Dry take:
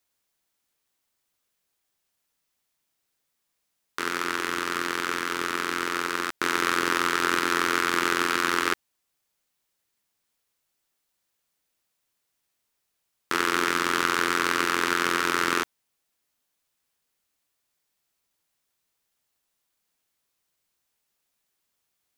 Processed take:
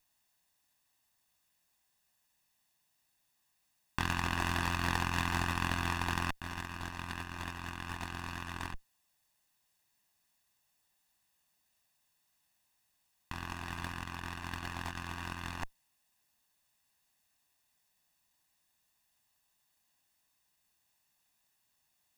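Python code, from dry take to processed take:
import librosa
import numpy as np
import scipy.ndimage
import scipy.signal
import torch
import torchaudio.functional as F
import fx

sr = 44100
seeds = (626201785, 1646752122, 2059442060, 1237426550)

y = fx.lower_of_two(x, sr, delay_ms=1.1)
y = fx.over_compress(y, sr, threshold_db=-33.0, ratio=-0.5)
y = y * librosa.db_to_amplitude(-3.0)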